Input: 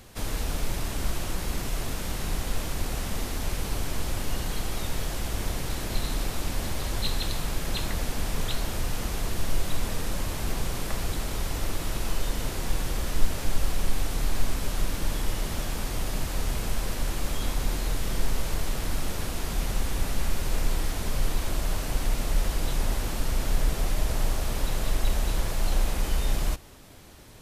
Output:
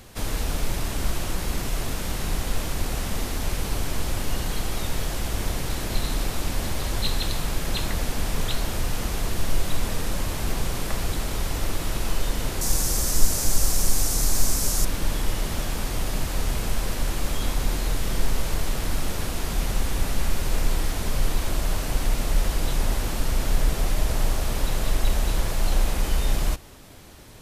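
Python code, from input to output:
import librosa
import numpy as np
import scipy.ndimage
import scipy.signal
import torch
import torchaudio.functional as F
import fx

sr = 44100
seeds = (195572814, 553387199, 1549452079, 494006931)

y = fx.high_shelf_res(x, sr, hz=4400.0, db=10.0, q=1.5, at=(12.61, 14.85))
y = F.gain(torch.from_numpy(y), 3.0).numpy()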